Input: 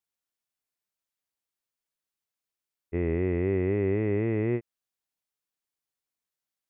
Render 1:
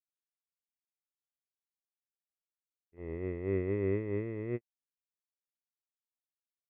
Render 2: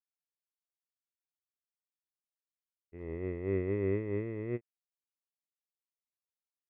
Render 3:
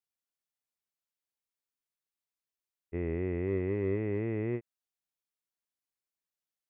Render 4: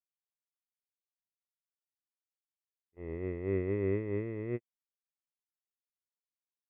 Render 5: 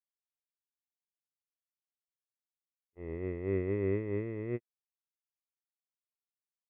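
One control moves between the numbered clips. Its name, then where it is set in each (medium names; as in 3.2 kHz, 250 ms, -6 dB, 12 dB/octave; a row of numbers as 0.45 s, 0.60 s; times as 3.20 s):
gate, range: -32 dB, -19 dB, -6 dB, -45 dB, -57 dB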